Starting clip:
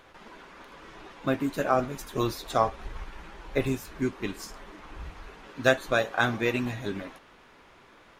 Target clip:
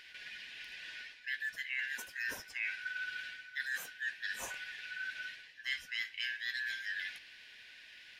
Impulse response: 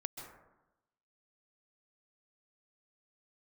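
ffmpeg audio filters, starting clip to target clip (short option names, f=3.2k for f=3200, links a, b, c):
-af "afftfilt=real='real(if(lt(b,272),68*(eq(floor(b/68),0)*3+eq(floor(b/68),1)*0+eq(floor(b/68),2)*1+eq(floor(b/68),3)*2)+mod(b,68),b),0)':imag='imag(if(lt(b,272),68*(eq(floor(b/68),0)*3+eq(floor(b/68),1)*0+eq(floor(b/68),2)*1+eq(floor(b/68),3)*2)+mod(b,68),b),0)':win_size=2048:overlap=0.75,bandreject=f=196.8:t=h:w=4,bandreject=f=393.6:t=h:w=4,bandreject=f=590.4:t=h:w=4,bandreject=f=787.2:t=h:w=4,bandreject=f=984:t=h:w=4,bandreject=f=1.1808k:t=h:w=4,bandreject=f=1.3776k:t=h:w=4,bandreject=f=1.5744k:t=h:w=4,bandreject=f=1.7712k:t=h:w=4,bandreject=f=1.968k:t=h:w=4,bandreject=f=2.1648k:t=h:w=4,bandreject=f=2.3616k:t=h:w=4,bandreject=f=2.5584k:t=h:w=4,bandreject=f=2.7552k:t=h:w=4,bandreject=f=2.952k:t=h:w=4,bandreject=f=3.1488k:t=h:w=4,bandreject=f=3.3456k:t=h:w=4,bandreject=f=3.5424k:t=h:w=4,bandreject=f=3.7392k:t=h:w=4,bandreject=f=3.936k:t=h:w=4,bandreject=f=4.1328k:t=h:w=4,bandreject=f=4.3296k:t=h:w=4,bandreject=f=4.5264k:t=h:w=4,bandreject=f=4.7232k:t=h:w=4,bandreject=f=4.92k:t=h:w=4,bandreject=f=5.1168k:t=h:w=4,bandreject=f=5.3136k:t=h:w=4,areverse,acompressor=threshold=-37dB:ratio=5,areverse"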